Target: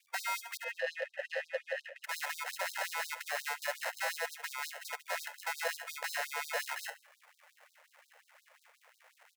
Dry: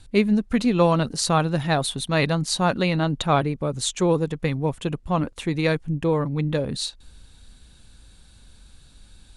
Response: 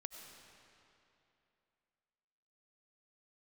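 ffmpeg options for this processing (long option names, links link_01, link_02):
-filter_complex "[0:a]acrusher=samples=38:mix=1:aa=0.000001,asettb=1/sr,asplit=3[link_01][link_02][link_03];[link_01]atrim=end=0.574[link_04];[link_02]atrim=start=0.57:end=2.04,asetpts=PTS-STARTPTS,afade=type=in:duration=0.004:curve=qsin,afade=type=out:start_time=1.466:duration=0.004:curve=qsin,asplit=3[link_05][link_06][link_07];[link_05]bandpass=frequency=530:width_type=q:width=8,volume=0dB[link_08];[link_06]bandpass=frequency=1840:width_type=q:width=8,volume=-6dB[link_09];[link_07]bandpass=frequency=2480:width_type=q:width=8,volume=-9dB[link_10];[link_08][link_09][link_10]amix=inputs=3:normalize=0[link_11];[link_03]atrim=start=2.036[link_12];[link_04][link_11]acrossfade=duration=0.004:curve1=hsin:curve2=qsin[link_13];[link_13][link_12]acrossfade=duration=0.004:curve1=qsin:curve2=hsin,aecho=1:1:71|142|213:0.126|0.0478|0.0182,alimiter=limit=-19.5dB:level=0:latency=1:release=70,equalizer=frequency=250:width_type=o:width=1:gain=-10,equalizer=frequency=2000:width_type=o:width=1:gain=8,equalizer=frequency=4000:width_type=o:width=1:gain=-5,asoftclip=type=tanh:threshold=-26dB,afftfilt=real='re*gte(b*sr/1024,440*pow(3800/440,0.5+0.5*sin(2*PI*5.6*pts/sr)))':imag='im*gte(b*sr/1024,440*pow(3800/440,0.5+0.5*sin(2*PI*5.6*pts/sr)))':win_size=1024:overlap=0.75"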